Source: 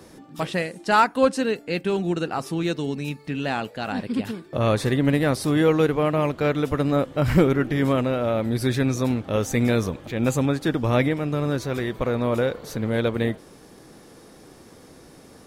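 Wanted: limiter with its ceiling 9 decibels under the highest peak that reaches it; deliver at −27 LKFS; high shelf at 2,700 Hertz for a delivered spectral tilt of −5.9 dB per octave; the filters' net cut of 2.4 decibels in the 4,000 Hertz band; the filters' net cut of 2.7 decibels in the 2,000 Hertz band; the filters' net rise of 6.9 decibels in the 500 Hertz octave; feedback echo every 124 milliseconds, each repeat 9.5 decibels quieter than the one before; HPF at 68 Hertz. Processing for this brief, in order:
high-pass filter 68 Hz
parametric band 500 Hz +8 dB
parametric band 2,000 Hz −5 dB
high-shelf EQ 2,700 Hz +4.5 dB
parametric band 4,000 Hz −5 dB
brickwall limiter −10 dBFS
repeating echo 124 ms, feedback 33%, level −9.5 dB
level −6.5 dB

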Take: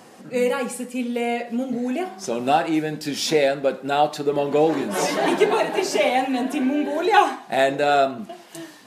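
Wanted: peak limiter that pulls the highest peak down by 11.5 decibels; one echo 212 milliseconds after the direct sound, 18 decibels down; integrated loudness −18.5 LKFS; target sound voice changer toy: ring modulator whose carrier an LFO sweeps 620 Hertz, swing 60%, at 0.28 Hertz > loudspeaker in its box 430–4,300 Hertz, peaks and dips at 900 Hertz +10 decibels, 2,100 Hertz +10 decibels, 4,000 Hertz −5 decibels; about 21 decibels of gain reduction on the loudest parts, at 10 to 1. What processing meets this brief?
downward compressor 10 to 1, threshold −33 dBFS
brickwall limiter −32.5 dBFS
single-tap delay 212 ms −18 dB
ring modulator whose carrier an LFO sweeps 620 Hz, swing 60%, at 0.28 Hz
loudspeaker in its box 430–4,300 Hz, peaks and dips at 900 Hz +10 dB, 2,100 Hz +10 dB, 4,000 Hz −5 dB
level +23 dB

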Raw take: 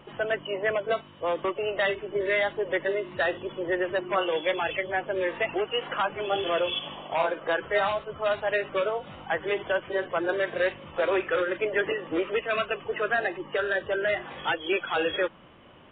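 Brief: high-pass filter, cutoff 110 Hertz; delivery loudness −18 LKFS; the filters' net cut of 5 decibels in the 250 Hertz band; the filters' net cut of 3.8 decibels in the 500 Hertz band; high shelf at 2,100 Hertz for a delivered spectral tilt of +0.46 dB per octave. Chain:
high-pass filter 110 Hz
parametric band 250 Hz −6.5 dB
parametric band 500 Hz −3.5 dB
high-shelf EQ 2,100 Hz +4.5 dB
level +10.5 dB

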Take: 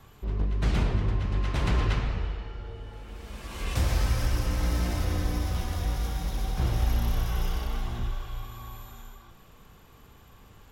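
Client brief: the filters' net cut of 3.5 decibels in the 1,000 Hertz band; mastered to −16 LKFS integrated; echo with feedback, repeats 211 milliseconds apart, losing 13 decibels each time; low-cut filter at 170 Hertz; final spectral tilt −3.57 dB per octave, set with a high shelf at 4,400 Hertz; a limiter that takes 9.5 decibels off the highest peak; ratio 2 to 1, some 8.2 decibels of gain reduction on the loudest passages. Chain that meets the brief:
high-pass filter 170 Hz
parametric band 1,000 Hz −5 dB
high-shelf EQ 4,400 Hz +7 dB
downward compressor 2 to 1, threshold −43 dBFS
brickwall limiter −36 dBFS
repeating echo 211 ms, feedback 22%, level −13 dB
level +29.5 dB

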